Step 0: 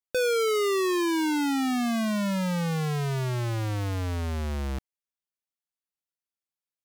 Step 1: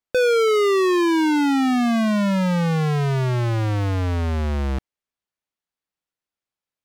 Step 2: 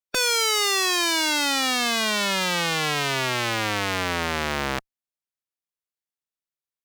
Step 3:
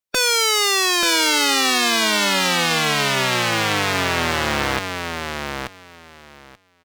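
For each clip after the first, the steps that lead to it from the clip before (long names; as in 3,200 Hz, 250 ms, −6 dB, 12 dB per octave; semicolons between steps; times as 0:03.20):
low-pass filter 3,100 Hz 6 dB per octave; level +7.5 dB
ceiling on every frequency bin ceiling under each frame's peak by 29 dB; harmonic generator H 8 −20 dB, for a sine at −4.5 dBFS; level −4.5 dB
repeating echo 883 ms, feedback 15%, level −5.5 dB; level +4 dB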